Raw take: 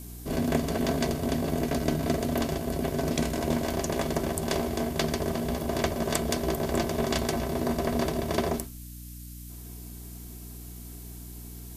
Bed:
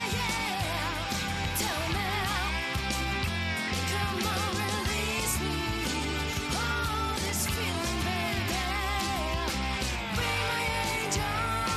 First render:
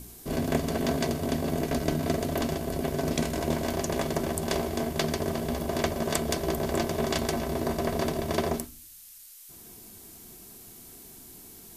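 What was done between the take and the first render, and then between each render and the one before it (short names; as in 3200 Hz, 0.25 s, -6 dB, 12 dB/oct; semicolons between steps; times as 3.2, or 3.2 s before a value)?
de-hum 60 Hz, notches 5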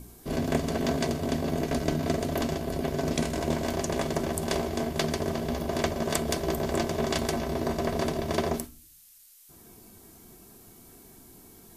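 noise print and reduce 6 dB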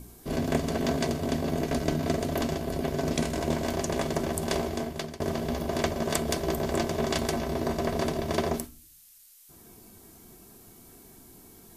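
4.67–5.2 fade out, to -16 dB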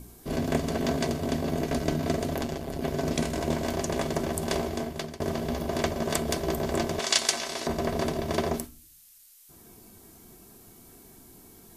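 2.35–2.82 AM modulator 140 Hz, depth 50%; 6.99–7.67 weighting filter ITU-R 468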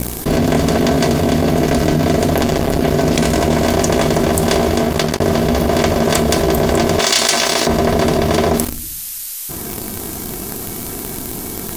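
sample leveller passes 3; fast leveller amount 70%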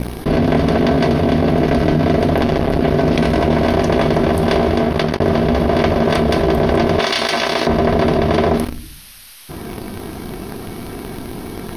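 running mean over 6 samples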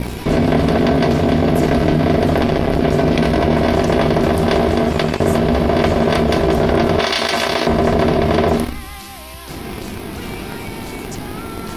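add bed -4.5 dB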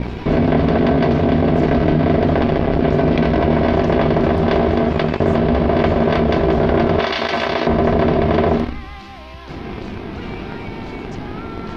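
air absorption 220 m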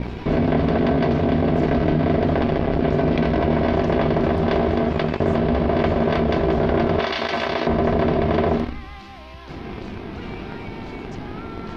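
gain -4 dB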